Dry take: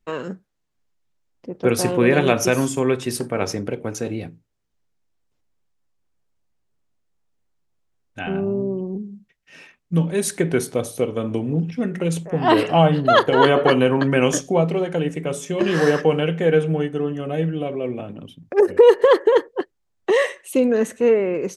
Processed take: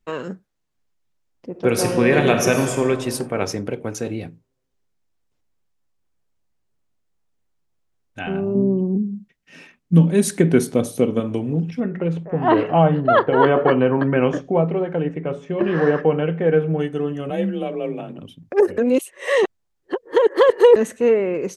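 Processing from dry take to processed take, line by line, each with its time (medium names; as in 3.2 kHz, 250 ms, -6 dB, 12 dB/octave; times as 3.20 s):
1.50–2.84 s: reverb throw, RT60 1.8 s, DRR 5 dB
8.55–11.20 s: peaking EQ 220 Hz +9.5 dB 1.2 oct
11.80–16.79 s: low-pass 1.8 kHz
17.30–18.18 s: frequency shift +32 Hz
18.78–20.76 s: reverse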